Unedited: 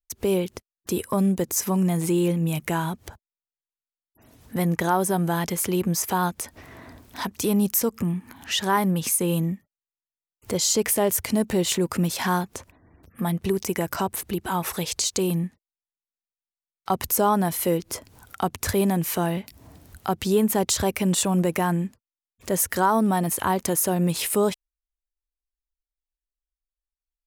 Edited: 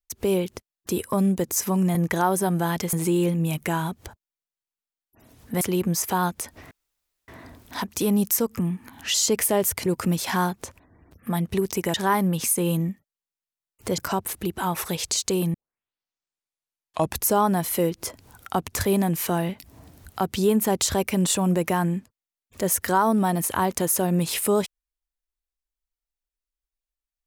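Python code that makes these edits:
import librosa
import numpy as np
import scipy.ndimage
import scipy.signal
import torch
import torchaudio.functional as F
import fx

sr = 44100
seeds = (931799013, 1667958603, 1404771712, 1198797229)

y = fx.edit(x, sr, fx.move(start_s=4.63, length_s=0.98, to_s=1.95),
    fx.insert_room_tone(at_s=6.71, length_s=0.57),
    fx.move(start_s=8.57, length_s=2.04, to_s=13.86),
    fx.cut(start_s=11.33, length_s=0.45),
    fx.tape_start(start_s=15.42, length_s=1.76), tone=tone)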